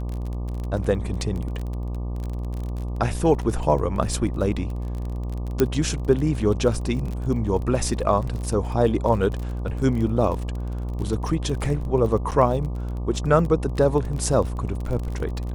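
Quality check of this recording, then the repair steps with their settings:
mains buzz 60 Hz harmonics 20 −28 dBFS
surface crackle 27 per second −29 dBFS
0:05.60: click −6 dBFS
0:12.31–0:12.32: drop-out 7.9 ms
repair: click removal
hum removal 60 Hz, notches 20
repair the gap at 0:12.31, 7.9 ms

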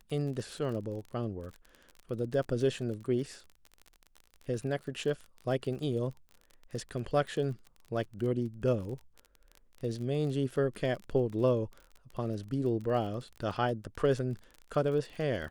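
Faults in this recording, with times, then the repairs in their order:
surface crackle 33 per second −39 dBFS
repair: click removal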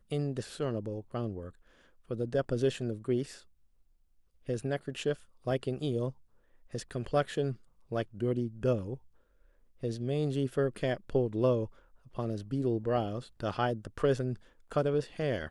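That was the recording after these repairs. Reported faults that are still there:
none of them is left

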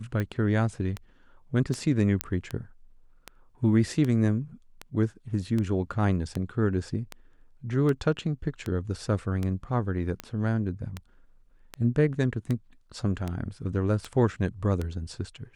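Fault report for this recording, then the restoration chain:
scratch tick 78 rpm −18 dBFS
0:02.21: click −9 dBFS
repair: click removal

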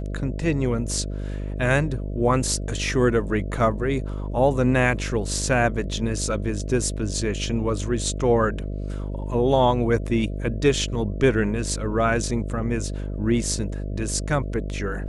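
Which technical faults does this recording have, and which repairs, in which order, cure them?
mains buzz 50 Hz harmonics 13 −29 dBFS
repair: hum removal 50 Hz, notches 13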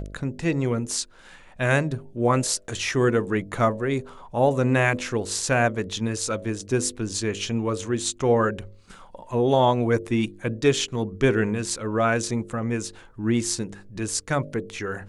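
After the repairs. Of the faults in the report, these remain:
none of them is left

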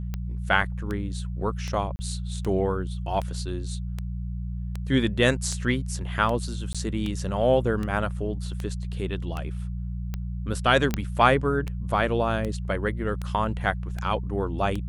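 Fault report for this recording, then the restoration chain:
mains hum 60 Hz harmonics 3 −31 dBFS
scratch tick 78 rpm −18 dBFS
0:01.96–0:01.99: drop-out 30 ms
0:06.73–0:06.75: drop-out 16 ms
0:10.94: click −10 dBFS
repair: click removal
hum removal 60 Hz, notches 3
repair the gap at 0:01.96, 30 ms
repair the gap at 0:06.73, 16 ms

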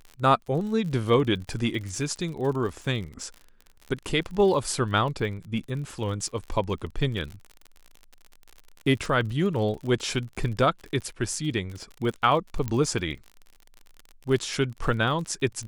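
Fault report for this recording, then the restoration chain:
surface crackle 48 per second −34 dBFS
0:12.68: click −16 dBFS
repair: click removal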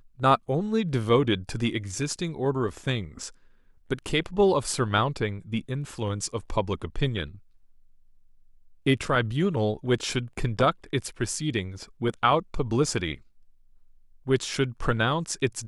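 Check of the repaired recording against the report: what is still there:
none of them is left

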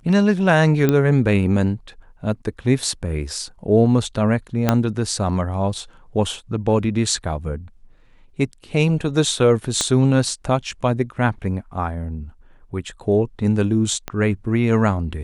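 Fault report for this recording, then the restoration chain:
0:00.89: click −5 dBFS
0:04.69: click −2 dBFS
0:09.81: click −6 dBFS
0:14.08: click −11 dBFS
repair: click removal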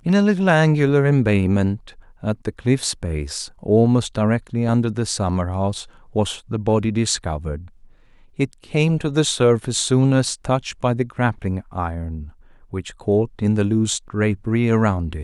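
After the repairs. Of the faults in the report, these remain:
0:04.69: click
0:09.81: click
0:14.08: click

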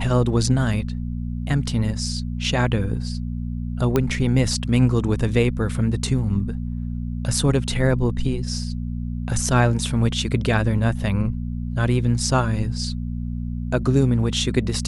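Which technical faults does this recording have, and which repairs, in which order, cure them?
mains hum 60 Hz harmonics 4 −27 dBFS
0:03.96: click −7 dBFS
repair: click removal
hum removal 60 Hz, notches 4

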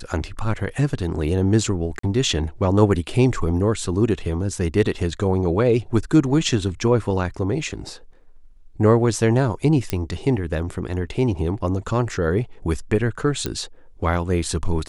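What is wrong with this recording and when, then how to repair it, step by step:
0:01.99–0:02.03: drop-out 44 ms
0:09.90: click −7 dBFS
0:13.46: click −10 dBFS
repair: click removal
repair the gap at 0:01.99, 44 ms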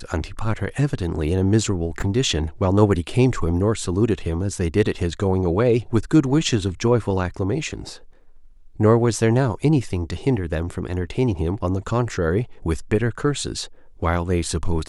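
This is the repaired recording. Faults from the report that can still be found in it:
none of them is left

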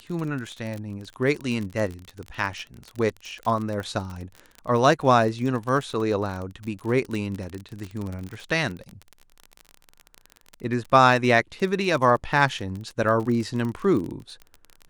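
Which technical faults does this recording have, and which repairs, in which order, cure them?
surface crackle 37 per second −29 dBFS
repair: click removal

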